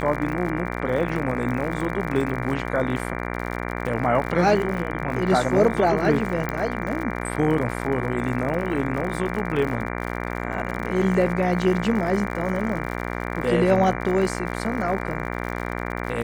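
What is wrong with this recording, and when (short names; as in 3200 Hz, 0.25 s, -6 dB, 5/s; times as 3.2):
buzz 60 Hz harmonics 39 -29 dBFS
crackle 73/s -30 dBFS
6.49 pop -13 dBFS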